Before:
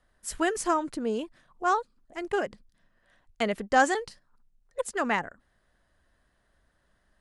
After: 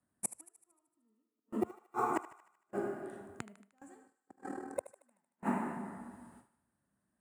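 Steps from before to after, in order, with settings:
octave-band graphic EQ 250/500/2,000/8,000 Hz +7/−9/−11/+6 dB
in parallel at −11.5 dB: decimation without filtering 28×
on the sum: dense smooth reverb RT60 1.8 s, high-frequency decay 0.65×, DRR 5 dB
0:01.75–0:02.45: downward compressor 6 to 1, threshold −34 dBFS, peak gain reduction 9.5 dB
gate with flip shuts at −30 dBFS, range −41 dB
0:04.07–0:04.88: amplitude modulation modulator 39 Hz, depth 55%
high-pass filter 90 Hz 24 dB per octave
flat-topped bell 4,500 Hz −12 dB 1.3 octaves
noise gate with hold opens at −53 dBFS
on a send: feedback echo with a high-pass in the loop 76 ms, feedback 58%, high-pass 590 Hz, level −14 dB
on the sum: level +10.5 dB

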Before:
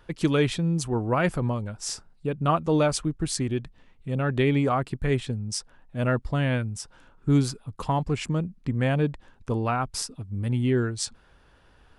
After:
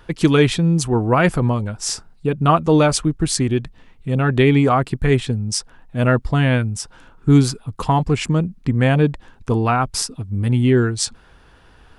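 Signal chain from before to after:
notch filter 570 Hz, Q 12
level +8.5 dB

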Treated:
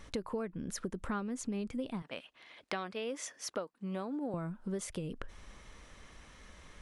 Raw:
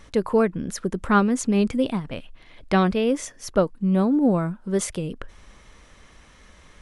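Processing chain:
0:02.02–0:04.34: meter weighting curve A
downward compressor 6 to 1, threshold −31 dBFS, peak gain reduction 16.5 dB
level −4 dB

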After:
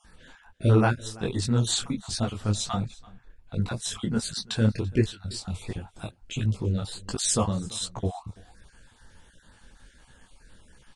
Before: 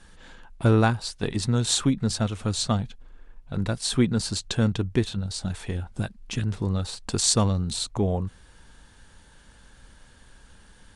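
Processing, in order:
time-frequency cells dropped at random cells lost 30%
single-tap delay 336 ms −22.5 dB
micro pitch shift up and down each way 48 cents
level +2.5 dB

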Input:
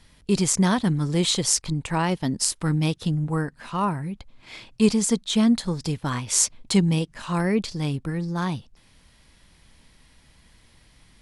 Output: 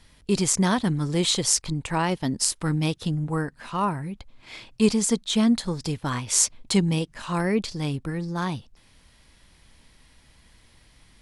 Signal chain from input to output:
parametric band 170 Hz −2.5 dB 0.83 octaves

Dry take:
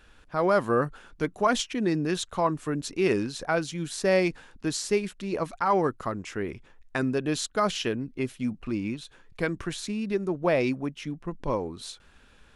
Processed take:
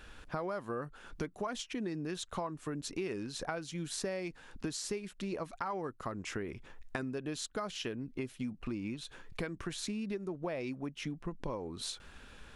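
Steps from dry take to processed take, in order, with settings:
downward compressor 8 to 1, threshold −39 dBFS, peak gain reduction 20.5 dB
level +3.5 dB

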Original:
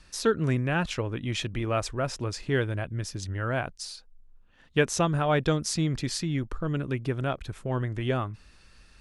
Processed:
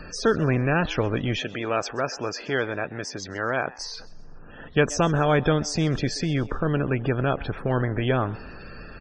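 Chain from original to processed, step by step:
compressor on every frequency bin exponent 0.6
0:01.40–0:03.78: high-pass filter 420 Hz 6 dB per octave
spectral peaks only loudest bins 64
echo with shifted repeats 130 ms, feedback 39%, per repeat +140 Hz, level −21 dB
level +1.5 dB

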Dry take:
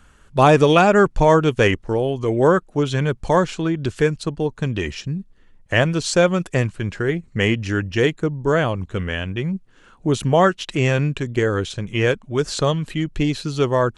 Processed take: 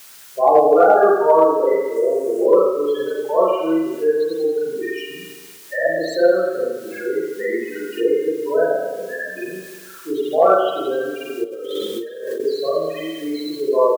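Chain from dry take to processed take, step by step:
spectral peaks only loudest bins 8
high-pass filter 380 Hz 24 dB per octave
spring reverb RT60 1.1 s, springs 37/43 ms, chirp 55 ms, DRR −9.5 dB
in parallel at −8.5 dB: bit-depth reduction 6 bits, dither triangular
0:01.96–0:02.46: on the sum: octave-band graphic EQ 1,000/4,000/8,000 Hz +4/−5/+7 dB
0:11.44–0:12.40: compressor whose output falls as the input rises −22 dBFS, ratio −1
on a send: repeating echo 266 ms, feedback 51%, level −23.5 dB
on the sum: one half of a high-frequency compander encoder only
level −7.5 dB

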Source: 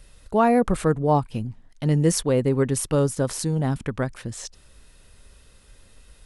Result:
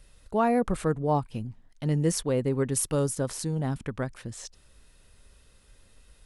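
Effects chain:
0:02.72–0:03.18: high-shelf EQ 6,300 Hz +8 dB
level −5.5 dB

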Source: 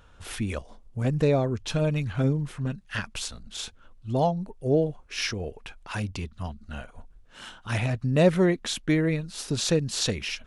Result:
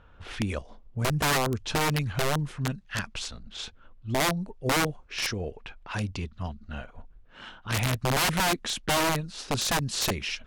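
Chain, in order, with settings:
wrap-around overflow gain 19 dB
low-pass that shuts in the quiet parts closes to 2,500 Hz, open at −24 dBFS

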